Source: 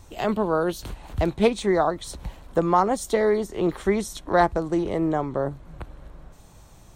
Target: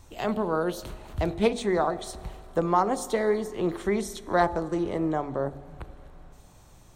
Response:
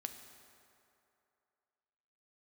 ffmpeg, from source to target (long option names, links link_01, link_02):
-filter_complex "[0:a]bandreject=frequency=48.12:width_type=h:width=4,bandreject=frequency=96.24:width_type=h:width=4,bandreject=frequency=144.36:width_type=h:width=4,bandreject=frequency=192.48:width_type=h:width=4,bandreject=frequency=240.6:width_type=h:width=4,bandreject=frequency=288.72:width_type=h:width=4,bandreject=frequency=336.84:width_type=h:width=4,bandreject=frequency=384.96:width_type=h:width=4,bandreject=frequency=433.08:width_type=h:width=4,bandreject=frequency=481.2:width_type=h:width=4,bandreject=frequency=529.32:width_type=h:width=4,bandreject=frequency=577.44:width_type=h:width=4,bandreject=frequency=625.56:width_type=h:width=4,bandreject=frequency=673.68:width_type=h:width=4,bandreject=frequency=721.8:width_type=h:width=4,bandreject=frequency=769.92:width_type=h:width=4,bandreject=frequency=818.04:width_type=h:width=4,bandreject=frequency=866.16:width_type=h:width=4,asplit=2[link_01][link_02];[1:a]atrim=start_sample=2205[link_03];[link_02][link_03]afir=irnorm=-1:irlink=0,volume=-4.5dB[link_04];[link_01][link_04]amix=inputs=2:normalize=0,volume=-6dB"